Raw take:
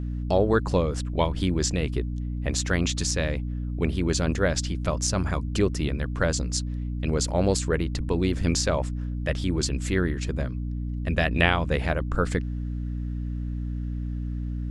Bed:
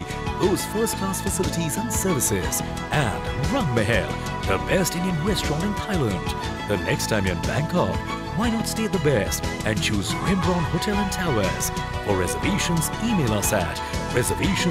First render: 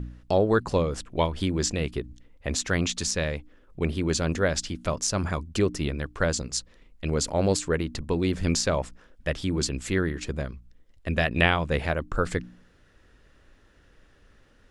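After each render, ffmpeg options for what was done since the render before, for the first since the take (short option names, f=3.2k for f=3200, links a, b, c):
-af "bandreject=f=60:t=h:w=4,bandreject=f=120:t=h:w=4,bandreject=f=180:t=h:w=4,bandreject=f=240:t=h:w=4,bandreject=f=300:t=h:w=4"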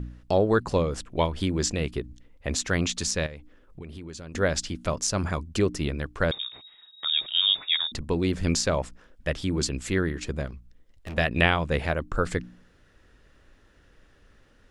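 -filter_complex "[0:a]asettb=1/sr,asplit=3[a][b][c];[a]atrim=end=3.264[d];[b]atrim=start=3.26:end=4.35,asetpts=PTS-STARTPTS,afade=t=in:d=0.004:c=qsin,afade=t=out:st=1.086:d=0.004:c=qsin,acompressor=threshold=-37dB:ratio=6:attack=3.2:release=140:knee=1:detection=peak[e];[c]atrim=start=4.346[f];[d][e]acrossfade=d=0.004:c1=hsin:c2=qsin[g];[g][f]acrossfade=d=0.004:c1=qsin:c2=hsin,asettb=1/sr,asplit=3[h][i][j];[h]atrim=end=6.314[k];[i]atrim=start=6.31:end=7.92,asetpts=PTS-STARTPTS,afade=t=in:d=0.004:c=qsin,afade=t=out:st=1.606:d=0.004:c=qsin,lowpass=f=3.2k:t=q:w=0.5098,lowpass=f=3.2k:t=q:w=0.6013,lowpass=f=3.2k:t=q:w=0.9,lowpass=f=3.2k:t=q:w=2.563,afreqshift=-3800[l];[j]atrim=start=7.916[m];[k][l]acrossfade=d=0.004:c1=hsin:c2=qsin[n];[n][m]acrossfade=d=0.004:c1=qsin:c2=hsin,asettb=1/sr,asplit=3[o][p][q];[o]atrim=end=10.474[r];[p]atrim=start=10.47:end=11.18,asetpts=PTS-STARTPTS,afade=t=in:d=0.004:c=qsin,afade=t=out:st=0.706:d=0.004:c=qsin,asoftclip=type=hard:threshold=-33.5dB[s];[q]atrim=start=11.176[t];[r][s]acrossfade=d=0.004:c1=hsin:c2=qsin[u];[u][t]acrossfade=d=0.004:c1=qsin:c2=hsin"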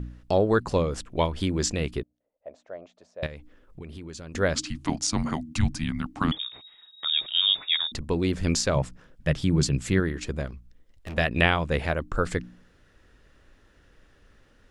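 -filter_complex "[0:a]asettb=1/sr,asplit=3[a][b][c];[a]atrim=end=2.034[d];[b]atrim=start=2.03:end=3.23,asetpts=PTS-STARTPTS,afade=t=in:d=0.004:c=qsin,afade=t=out:st=1.196:d=0.004:c=qsin,bandpass=f=620:t=q:w=7.6[e];[c]atrim=start=3.226[f];[d][e]acrossfade=d=0.004:c1=hsin:c2=qsin[g];[g][f]acrossfade=d=0.004:c1=qsin:c2=hsin,asettb=1/sr,asplit=3[h][i][j];[h]atrim=end=4.554[k];[i]atrim=start=4.55:end=6.37,asetpts=PTS-STARTPTS,afade=t=in:d=0.004:c=qsin,afade=t=out:st=1.816:d=0.004:c=qsin,afreqshift=-320[l];[j]atrim=start=6.366[m];[k][l]acrossfade=d=0.004:c1=hsin:c2=qsin[n];[n][m]acrossfade=d=0.004:c1=qsin:c2=hsin,asettb=1/sr,asplit=3[o][p][q];[o]atrim=end=8.754[r];[p]atrim=start=8.75:end=10,asetpts=PTS-STARTPTS,afade=t=in:d=0.004:c=qsin,afade=t=out:st=1.246:d=0.004:c=qsin,equalizer=f=140:t=o:w=0.77:g=12[s];[q]atrim=start=9.996[t];[r][s]acrossfade=d=0.004:c1=hsin:c2=qsin[u];[u][t]acrossfade=d=0.004:c1=qsin:c2=hsin"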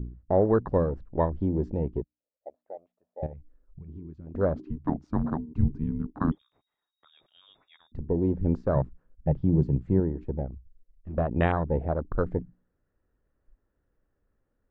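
-af "lowpass=1.1k,afwtdn=0.0282"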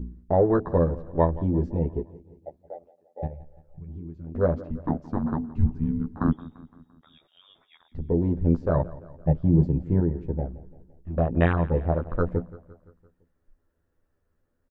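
-filter_complex "[0:a]asplit=2[a][b];[b]adelay=12,volume=-3dB[c];[a][c]amix=inputs=2:normalize=0,aecho=1:1:171|342|513|684|855:0.112|0.0617|0.0339|0.0187|0.0103"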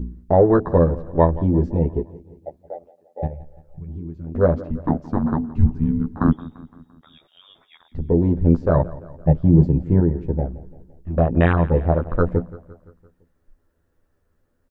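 -af "volume=6dB,alimiter=limit=-3dB:level=0:latency=1"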